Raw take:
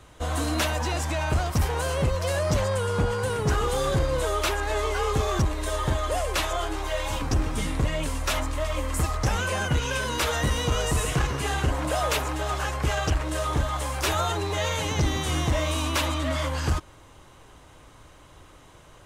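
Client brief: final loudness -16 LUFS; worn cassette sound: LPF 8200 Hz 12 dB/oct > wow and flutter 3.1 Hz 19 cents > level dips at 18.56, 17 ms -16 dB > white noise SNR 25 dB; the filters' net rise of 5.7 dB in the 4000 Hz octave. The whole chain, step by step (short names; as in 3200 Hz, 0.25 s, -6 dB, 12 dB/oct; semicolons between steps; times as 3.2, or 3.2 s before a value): LPF 8200 Hz 12 dB/oct; bell 4000 Hz +7.5 dB; wow and flutter 3.1 Hz 19 cents; level dips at 18.56, 17 ms -16 dB; white noise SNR 25 dB; gain +9 dB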